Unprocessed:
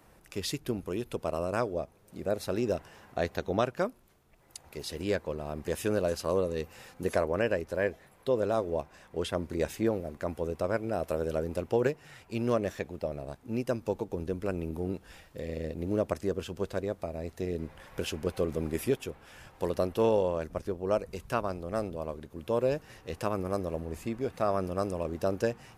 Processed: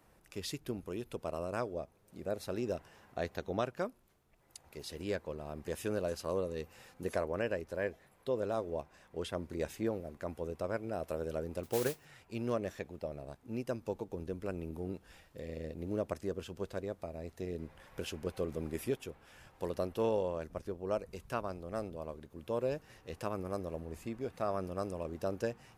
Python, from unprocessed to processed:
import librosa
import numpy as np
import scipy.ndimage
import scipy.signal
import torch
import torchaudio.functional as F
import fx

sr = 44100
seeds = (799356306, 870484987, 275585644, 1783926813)

y = fx.mod_noise(x, sr, seeds[0], snr_db=10, at=(11.63, 12.05))
y = y * librosa.db_to_amplitude(-6.5)